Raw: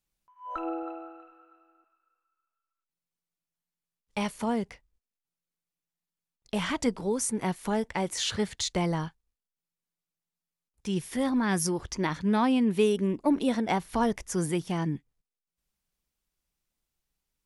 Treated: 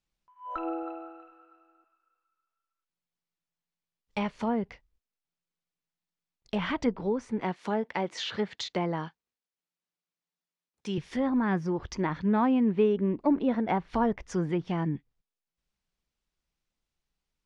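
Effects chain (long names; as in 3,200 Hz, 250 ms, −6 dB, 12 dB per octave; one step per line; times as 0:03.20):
0:07.41–0:10.98: high-pass filter 200 Hz 12 dB per octave
treble cut that deepens with the level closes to 1,800 Hz, closed at −24 dBFS
low-pass filter 5,800 Hz 12 dB per octave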